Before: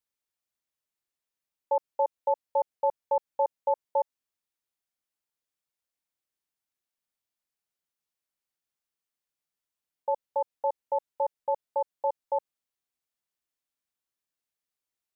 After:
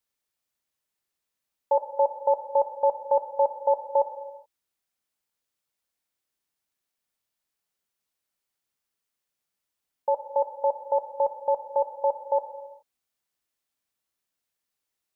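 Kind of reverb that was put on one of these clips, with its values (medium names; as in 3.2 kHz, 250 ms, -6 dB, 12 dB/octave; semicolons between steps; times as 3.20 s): gated-style reverb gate 450 ms falling, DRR 8.5 dB; trim +4.5 dB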